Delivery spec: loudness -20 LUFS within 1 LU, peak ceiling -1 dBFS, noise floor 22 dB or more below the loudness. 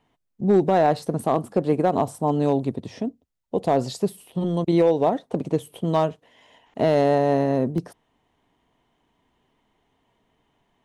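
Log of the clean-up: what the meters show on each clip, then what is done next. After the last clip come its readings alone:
clipped 0.6%; flat tops at -10.0 dBFS; dropouts 3; longest dropout 1.6 ms; loudness -23.0 LUFS; peak -10.0 dBFS; loudness target -20.0 LUFS
-> clip repair -10 dBFS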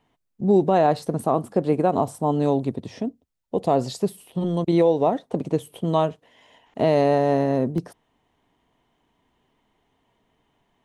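clipped 0.0%; dropouts 3; longest dropout 1.6 ms
-> interpolate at 0.99/5.77/7.78, 1.6 ms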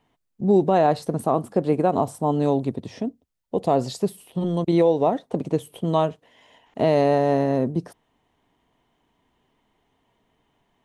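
dropouts 0; loudness -22.5 LUFS; peak -7.0 dBFS; loudness target -20.0 LUFS
-> gain +2.5 dB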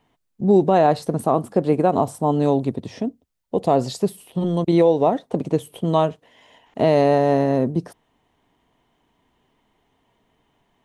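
loudness -20.0 LUFS; peak -5.0 dBFS; noise floor -69 dBFS

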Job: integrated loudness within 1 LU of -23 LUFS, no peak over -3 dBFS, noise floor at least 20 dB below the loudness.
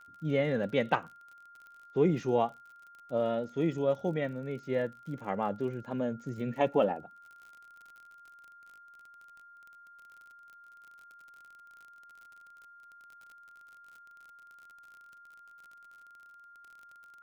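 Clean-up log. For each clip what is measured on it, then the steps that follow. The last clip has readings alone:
ticks 42/s; steady tone 1400 Hz; tone level -52 dBFS; loudness -32.0 LUFS; peak -13.0 dBFS; loudness target -23.0 LUFS
-> de-click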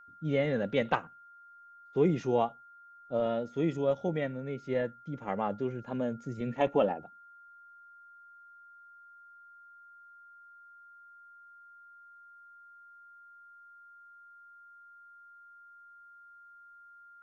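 ticks 0.058/s; steady tone 1400 Hz; tone level -52 dBFS
-> notch 1400 Hz, Q 30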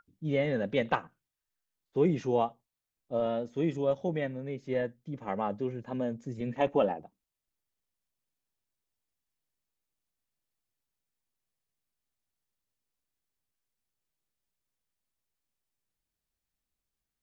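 steady tone none; loudness -32.0 LUFS; peak -13.5 dBFS; loudness target -23.0 LUFS
-> gain +9 dB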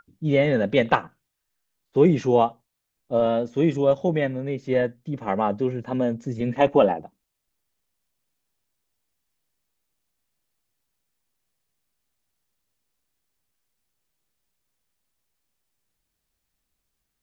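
loudness -23.0 LUFS; peak -4.5 dBFS; noise floor -80 dBFS

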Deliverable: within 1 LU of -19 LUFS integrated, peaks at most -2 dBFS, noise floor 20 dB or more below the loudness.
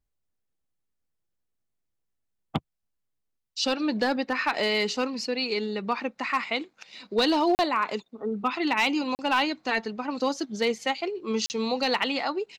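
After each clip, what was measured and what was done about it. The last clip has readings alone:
clipped 0.3%; flat tops at -16.0 dBFS; dropouts 3; longest dropout 39 ms; loudness -27.0 LUFS; peak -16.0 dBFS; loudness target -19.0 LUFS
-> clip repair -16 dBFS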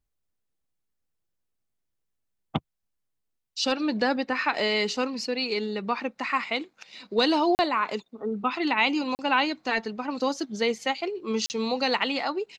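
clipped 0.0%; dropouts 3; longest dropout 39 ms
-> interpolate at 7.55/9.15/11.46, 39 ms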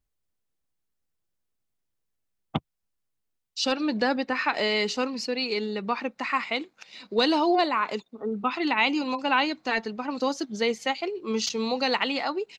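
dropouts 0; loudness -26.5 LUFS; peak -10.0 dBFS; loudness target -19.0 LUFS
-> gain +7.5 dB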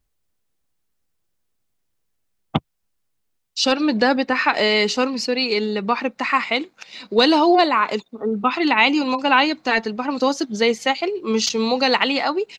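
loudness -19.0 LUFS; peak -2.5 dBFS; noise floor -72 dBFS

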